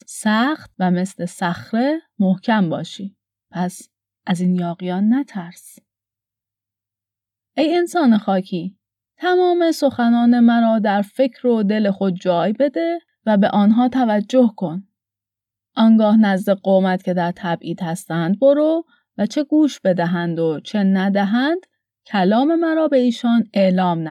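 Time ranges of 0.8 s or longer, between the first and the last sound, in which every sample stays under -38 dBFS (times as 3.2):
5.78–7.57
14.82–15.77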